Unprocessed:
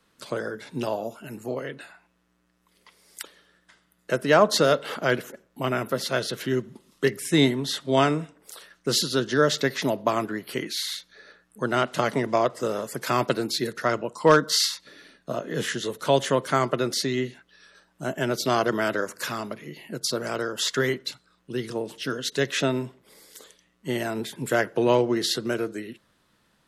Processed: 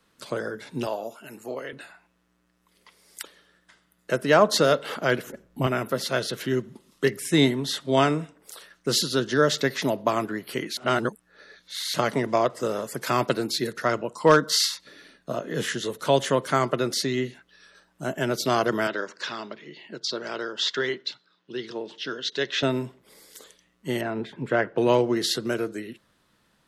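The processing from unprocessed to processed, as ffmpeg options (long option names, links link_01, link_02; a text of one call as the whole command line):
ffmpeg -i in.wav -filter_complex "[0:a]asettb=1/sr,asplit=3[link_01][link_02][link_03];[link_01]atrim=end=0.874[link_04];[link_02]atrim=start=0.87:end=1.73,asetpts=PTS-STARTPTS,afade=type=in:duration=0.004:curve=qsin,afade=type=out:start_time=0.856:duration=0.004:curve=qsin,highpass=frequency=430:poles=1[link_05];[link_03]atrim=start=1.726[link_06];[link_04][link_05]acrossfade=duration=0.004:curve1=hsin:curve2=qsin[link_07];[link_07][link_06]acrossfade=duration=0.004:curve1=qsin:curve2=hsin,asettb=1/sr,asplit=3[link_08][link_09][link_10];[link_08]atrim=end=5.274[link_11];[link_09]atrim=start=5.27:end=5.67,asetpts=PTS-STARTPTS,afade=type=in:duration=0.004:curve=qsin,afade=type=out:start_time=0.396:duration=0.004:curve=qsin,lowshelf=frequency=230:gain=12[link_12];[link_10]atrim=start=5.666[link_13];[link_11][link_12]acrossfade=duration=0.004:curve1=hsin:curve2=qsin[link_14];[link_14][link_13]acrossfade=duration=0.004:curve1=qsin:curve2=hsin,asettb=1/sr,asplit=3[link_15][link_16][link_17];[link_15]atrim=end=18.874[link_18];[link_16]atrim=start=18.87:end=22.63,asetpts=PTS-STARTPTS,afade=type=in:duration=0.004:curve=qsin,afade=type=out:start_time=3.756:duration=0.004:curve=qsin,highpass=250,equalizer=frequency=260:width_type=q:width=4:gain=-5,equalizer=frequency=510:width_type=q:width=4:gain=-5,equalizer=frequency=720:width_type=q:width=4:gain=-4,equalizer=frequency=1200:width_type=q:width=4:gain=-4,equalizer=frequency=2300:width_type=q:width=4:gain=-3,equalizer=frequency=3500:width_type=q:width=4:gain=4,lowpass=frequency=5400:width=0.5412,lowpass=frequency=5400:width=1.3066[link_19];[link_17]atrim=start=22.626[link_20];[link_18][link_19]acrossfade=duration=0.004:curve1=hsin:curve2=qsin[link_21];[link_21][link_20]acrossfade=duration=0.004:curve1=qsin:curve2=hsin,asettb=1/sr,asplit=3[link_22][link_23][link_24];[link_22]atrim=end=24.014[link_25];[link_23]atrim=start=24.01:end=24.78,asetpts=PTS-STARTPTS,afade=type=in:duration=0.004:curve=qsin,afade=type=out:start_time=0.766:duration=0.004:curve=qsin,lowpass=2500[link_26];[link_24]atrim=start=24.776[link_27];[link_25][link_26]acrossfade=duration=0.004:curve1=hsin:curve2=qsin[link_28];[link_28][link_27]acrossfade=duration=0.004:curve1=qsin:curve2=hsin,asplit=3[link_29][link_30][link_31];[link_29]atrim=end=10.772[link_32];[link_30]atrim=start=10.768:end=11.942,asetpts=PTS-STARTPTS,areverse[link_33];[link_31]atrim=start=11.938[link_34];[link_32][link_33]acrossfade=duration=0.004:curve1=hsin:curve2=hsin[link_35];[link_35][link_34]acrossfade=duration=0.004:curve1=hsin:curve2=hsin" out.wav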